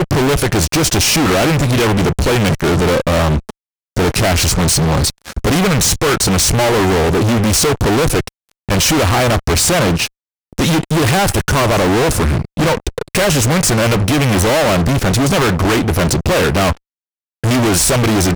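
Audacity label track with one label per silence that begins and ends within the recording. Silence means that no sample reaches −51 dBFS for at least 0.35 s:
3.510000	3.960000	silence
10.080000	10.530000	silence
16.770000	17.440000	silence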